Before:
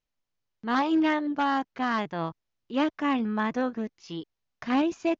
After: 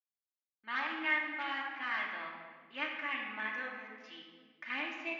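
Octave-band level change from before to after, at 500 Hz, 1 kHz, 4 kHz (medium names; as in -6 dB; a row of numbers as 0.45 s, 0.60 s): -17.0 dB, -11.5 dB, -4.5 dB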